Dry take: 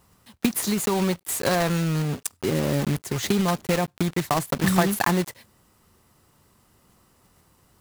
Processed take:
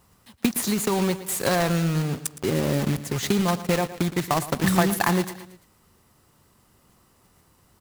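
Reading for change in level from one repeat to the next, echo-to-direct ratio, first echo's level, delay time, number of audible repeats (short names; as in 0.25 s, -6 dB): -5.5 dB, -13.5 dB, -15.0 dB, 0.114 s, 3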